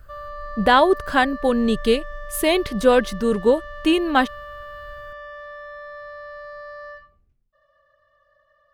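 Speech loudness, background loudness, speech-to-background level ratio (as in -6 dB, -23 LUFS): -19.5 LUFS, -36.5 LUFS, 17.0 dB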